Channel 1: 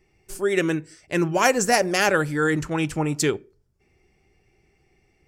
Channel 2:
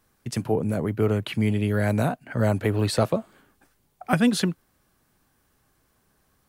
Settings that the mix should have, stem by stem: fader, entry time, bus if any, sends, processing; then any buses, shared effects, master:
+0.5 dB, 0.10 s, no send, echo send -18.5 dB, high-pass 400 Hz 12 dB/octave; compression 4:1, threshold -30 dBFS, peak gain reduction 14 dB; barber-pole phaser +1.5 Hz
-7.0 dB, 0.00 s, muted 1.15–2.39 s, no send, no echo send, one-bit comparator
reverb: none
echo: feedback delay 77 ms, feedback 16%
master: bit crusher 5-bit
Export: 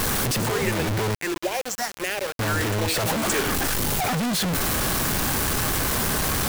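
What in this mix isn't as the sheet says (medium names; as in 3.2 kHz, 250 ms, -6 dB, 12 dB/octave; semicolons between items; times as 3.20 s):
stem 1 +0.5 dB -> +6.5 dB; stem 2 -7.0 dB -> +0.5 dB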